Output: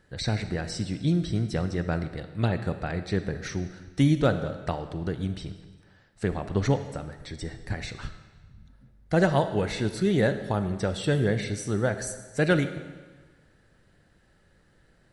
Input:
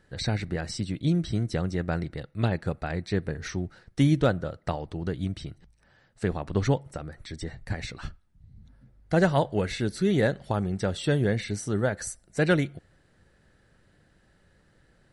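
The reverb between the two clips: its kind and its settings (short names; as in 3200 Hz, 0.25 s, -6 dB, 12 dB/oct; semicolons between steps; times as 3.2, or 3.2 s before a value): digital reverb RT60 1.4 s, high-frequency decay 0.95×, pre-delay 0 ms, DRR 9.5 dB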